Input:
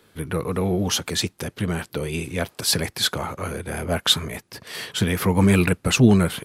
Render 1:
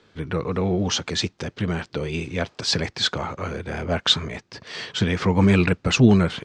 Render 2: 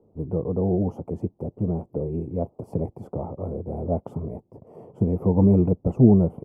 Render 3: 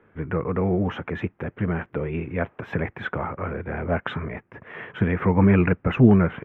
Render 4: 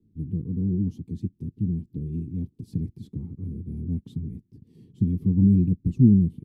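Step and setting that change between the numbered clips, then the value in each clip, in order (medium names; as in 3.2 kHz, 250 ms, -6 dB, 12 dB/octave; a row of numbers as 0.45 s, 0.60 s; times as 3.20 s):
inverse Chebyshev low-pass, stop band from: 11 kHz, 1.5 kHz, 4.2 kHz, 560 Hz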